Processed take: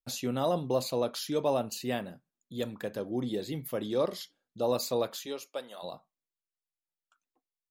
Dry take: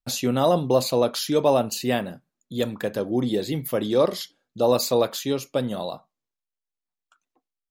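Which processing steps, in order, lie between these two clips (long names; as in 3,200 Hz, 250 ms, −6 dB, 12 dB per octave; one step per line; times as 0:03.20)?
0:05.25–0:05.82: high-pass filter 370 Hz → 780 Hz 12 dB per octave
level −9 dB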